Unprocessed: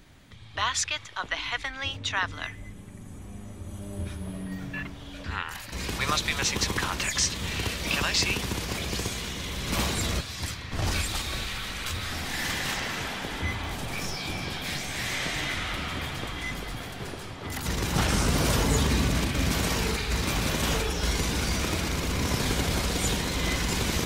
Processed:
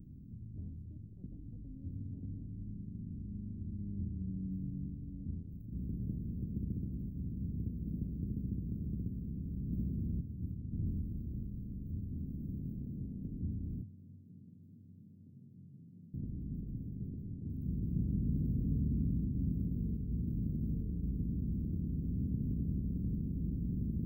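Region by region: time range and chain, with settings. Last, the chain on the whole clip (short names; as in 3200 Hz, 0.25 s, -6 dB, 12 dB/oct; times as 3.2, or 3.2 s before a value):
13.81–16.14 flipped gate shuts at -25 dBFS, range -26 dB + frequency shift +93 Hz + comb 1.5 ms, depth 40%
whole clip: per-bin compression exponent 0.6; inverse Chebyshev band-stop 1000–9600 Hz, stop band 70 dB; low shelf 61 Hz -9 dB; gain -6.5 dB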